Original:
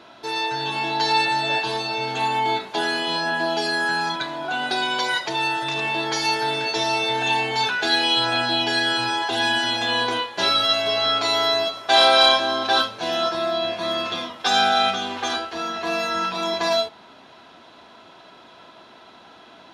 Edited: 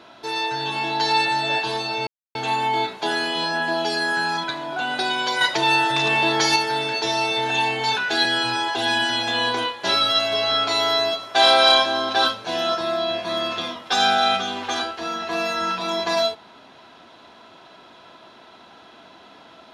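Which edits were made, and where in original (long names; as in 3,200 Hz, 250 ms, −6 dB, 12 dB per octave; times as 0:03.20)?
0:02.07: splice in silence 0.28 s
0:05.13–0:06.28: clip gain +5 dB
0:07.97–0:08.79: remove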